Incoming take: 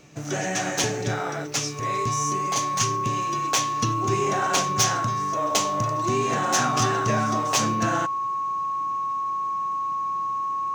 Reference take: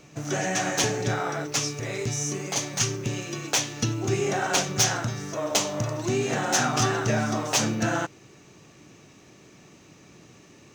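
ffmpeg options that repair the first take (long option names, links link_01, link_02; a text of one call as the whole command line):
ffmpeg -i in.wav -af "bandreject=frequency=1100:width=30" out.wav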